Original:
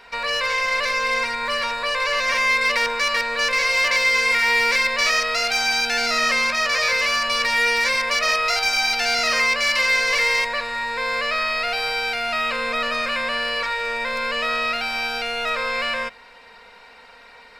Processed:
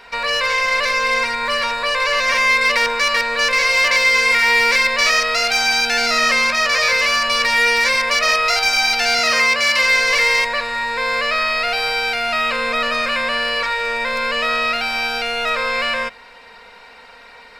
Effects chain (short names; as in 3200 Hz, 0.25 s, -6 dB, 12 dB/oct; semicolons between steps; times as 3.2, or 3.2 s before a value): 9.19–9.83 HPF 40 Hz; gain +4 dB